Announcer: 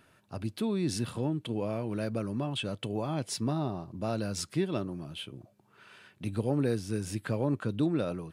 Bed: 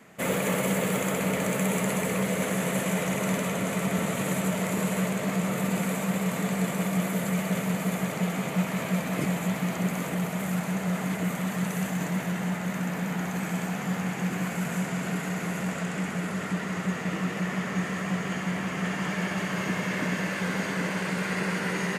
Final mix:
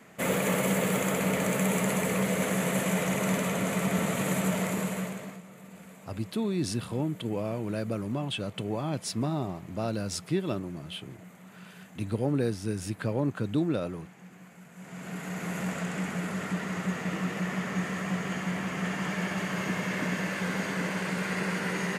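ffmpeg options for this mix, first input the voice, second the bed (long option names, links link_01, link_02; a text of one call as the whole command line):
ffmpeg -i stem1.wav -i stem2.wav -filter_complex "[0:a]adelay=5750,volume=1dB[link_01];[1:a]volume=18.5dB,afade=type=out:start_time=4.56:duration=0.86:silence=0.0944061,afade=type=in:start_time=14.75:duration=0.86:silence=0.112202[link_02];[link_01][link_02]amix=inputs=2:normalize=0" out.wav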